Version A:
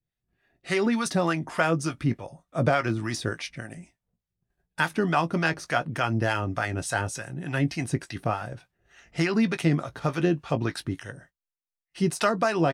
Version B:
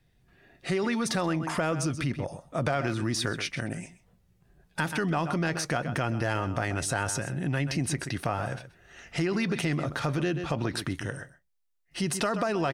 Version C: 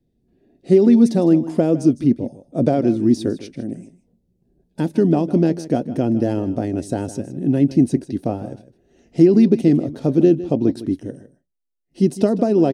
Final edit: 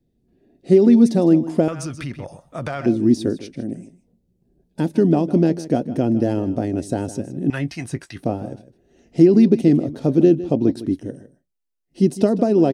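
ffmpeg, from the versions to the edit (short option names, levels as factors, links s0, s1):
-filter_complex "[2:a]asplit=3[s0][s1][s2];[s0]atrim=end=1.682[s3];[1:a]atrim=start=1.678:end=2.862[s4];[s1]atrim=start=2.858:end=7.502[s5];[0:a]atrim=start=7.498:end=8.232[s6];[s2]atrim=start=8.228[s7];[s3][s4]acrossfade=d=0.004:c1=hsin:c2=hsin[s8];[s8][s5]acrossfade=d=0.004:c1=hsin:c2=hsin[s9];[s9][s6]acrossfade=d=0.004:c1=hsin:c2=hsin[s10];[s10][s7]acrossfade=d=0.004:c1=hsin:c2=hsin"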